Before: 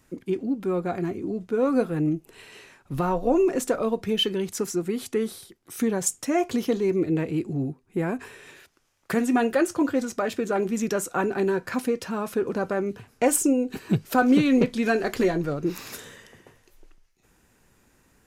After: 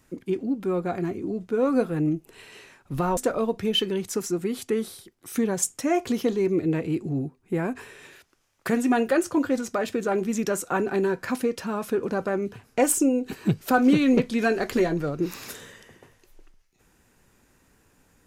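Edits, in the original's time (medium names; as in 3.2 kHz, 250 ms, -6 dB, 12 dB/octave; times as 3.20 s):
3.17–3.61 s: delete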